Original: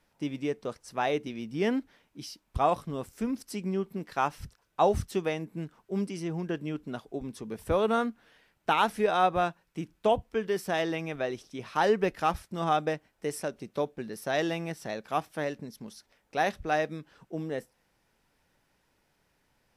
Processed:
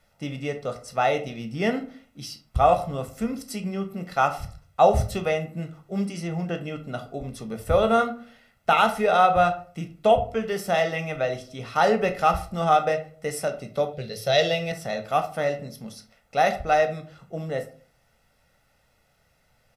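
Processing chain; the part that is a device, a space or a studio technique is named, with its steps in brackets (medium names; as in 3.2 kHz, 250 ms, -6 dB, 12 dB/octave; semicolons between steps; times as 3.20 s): microphone above a desk (comb 1.5 ms, depth 67%; reverberation RT60 0.45 s, pre-delay 12 ms, DRR 6 dB); 13.93–14.72 s: ten-band graphic EQ 125 Hz +7 dB, 250 Hz -11 dB, 500 Hz +8 dB, 1 kHz -10 dB, 4 kHz +11 dB, 8 kHz -4 dB; trim +3.5 dB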